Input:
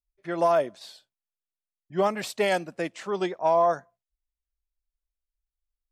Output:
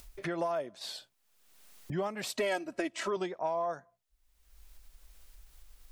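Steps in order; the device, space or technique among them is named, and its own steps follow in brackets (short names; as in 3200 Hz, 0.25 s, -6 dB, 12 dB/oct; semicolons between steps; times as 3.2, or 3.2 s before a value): upward and downward compression (upward compressor, threshold -28 dBFS; compressor 4:1, threshold -32 dBFS, peak gain reduction 12 dB); 2.37–3.17 comb 3.1 ms, depth 87%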